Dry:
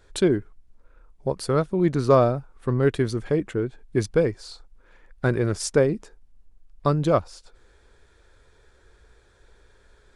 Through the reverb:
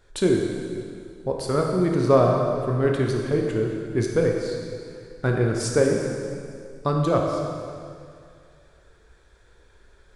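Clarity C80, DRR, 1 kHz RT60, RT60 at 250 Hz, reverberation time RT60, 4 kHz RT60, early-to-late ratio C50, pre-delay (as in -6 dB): 3.0 dB, 0.0 dB, 2.3 s, 2.2 s, 2.3 s, 2.1 s, 2.0 dB, 8 ms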